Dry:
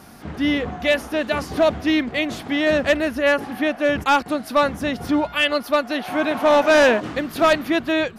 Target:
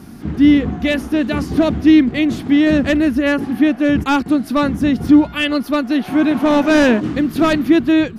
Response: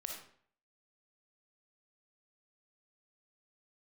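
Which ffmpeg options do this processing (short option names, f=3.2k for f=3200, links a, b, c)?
-af "lowshelf=f=420:t=q:w=1.5:g=9"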